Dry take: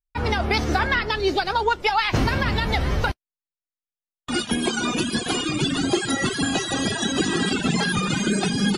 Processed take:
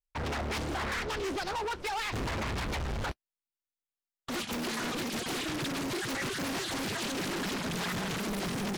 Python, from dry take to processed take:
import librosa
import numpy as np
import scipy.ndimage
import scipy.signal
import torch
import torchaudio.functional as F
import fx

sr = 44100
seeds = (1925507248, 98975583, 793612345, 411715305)

y = np.clip(10.0 ** (26.5 / 20.0) * x, -1.0, 1.0) / 10.0 ** (26.5 / 20.0)
y = fx.doppler_dist(y, sr, depth_ms=0.93)
y = F.gain(torch.from_numpy(y), -5.0).numpy()